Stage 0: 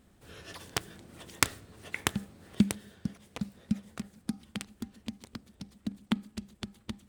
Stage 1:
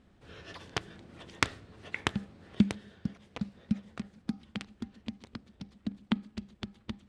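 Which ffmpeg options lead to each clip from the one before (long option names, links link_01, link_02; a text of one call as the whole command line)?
ffmpeg -i in.wav -af "lowpass=4400" out.wav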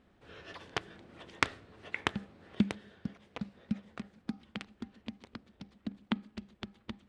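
ffmpeg -i in.wav -af "bass=frequency=250:gain=-6,treble=frequency=4000:gain=-6" out.wav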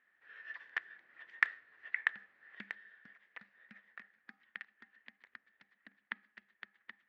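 ffmpeg -i in.wav -af "bandpass=frequency=1800:width_type=q:width=8.7:csg=0,volume=8.5dB" out.wav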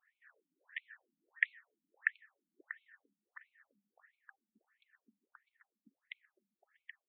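ffmpeg -i in.wav -af "afftfilt=real='re*between(b*sr/1024,210*pow(3100/210,0.5+0.5*sin(2*PI*1.5*pts/sr))/1.41,210*pow(3100/210,0.5+0.5*sin(2*PI*1.5*pts/sr))*1.41)':imag='im*between(b*sr/1024,210*pow(3100/210,0.5+0.5*sin(2*PI*1.5*pts/sr))/1.41,210*pow(3100/210,0.5+0.5*sin(2*PI*1.5*pts/sr))*1.41)':win_size=1024:overlap=0.75" out.wav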